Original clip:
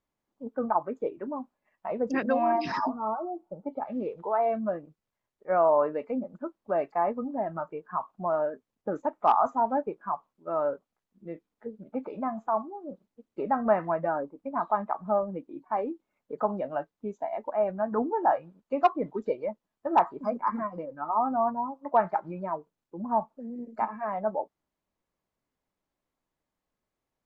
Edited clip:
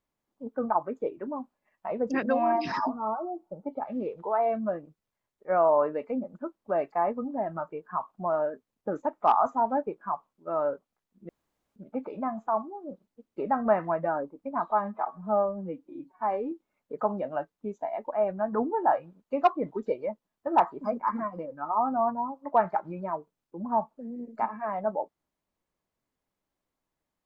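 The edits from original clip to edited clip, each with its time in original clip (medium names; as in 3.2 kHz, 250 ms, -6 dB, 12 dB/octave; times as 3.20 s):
11.29–11.76 s: room tone
14.70–15.91 s: stretch 1.5×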